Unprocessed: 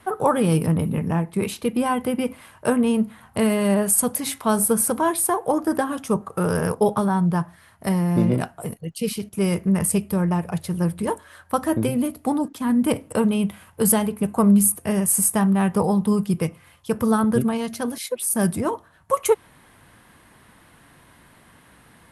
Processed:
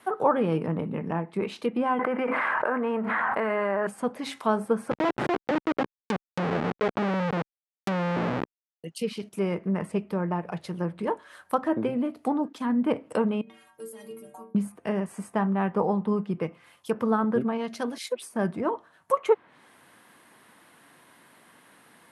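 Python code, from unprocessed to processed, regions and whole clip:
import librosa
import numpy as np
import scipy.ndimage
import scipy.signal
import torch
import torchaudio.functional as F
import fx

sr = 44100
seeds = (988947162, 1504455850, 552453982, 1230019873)

y = fx.chain(x, sr, fx.highpass(hz=1100.0, slope=6),
    fx.high_shelf_res(hz=2400.0, db=-11.5, q=1.5),
    fx.env_flatten(amount_pct=100), at=(1.99, 3.87))
y = fx.chain(y, sr, fx.low_shelf(hz=160.0, db=7.5),
    fx.schmitt(flips_db=-17.0),
    fx.env_flatten(amount_pct=50), at=(4.91, 8.84))
y = fx.chain(y, sr, fx.over_compress(threshold_db=-26.0, ratio=-1.0),
    fx.stiff_resonator(f0_hz=68.0, decay_s=0.83, stiffness=0.03), at=(13.41, 14.55))
y = fx.env_lowpass_down(y, sr, base_hz=2100.0, full_db=-19.0)
y = scipy.signal.sosfilt(scipy.signal.butter(2, 240.0, 'highpass', fs=sr, output='sos'), y)
y = y * librosa.db_to_amplitude(-2.5)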